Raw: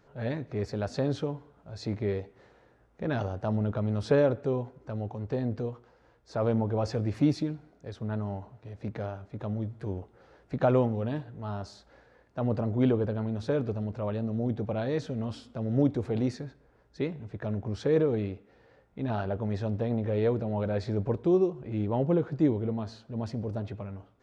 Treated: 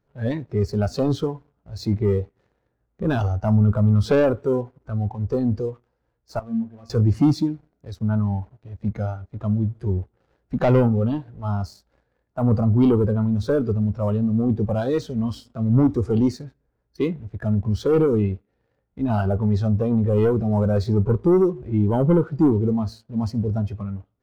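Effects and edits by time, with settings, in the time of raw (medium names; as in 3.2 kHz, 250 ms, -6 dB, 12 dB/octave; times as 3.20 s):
6.39–6.90 s: feedback comb 230 Hz, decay 0.6 s, harmonics odd, mix 90%
whole clip: waveshaping leveller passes 2; bass shelf 250 Hz +9 dB; spectral noise reduction 11 dB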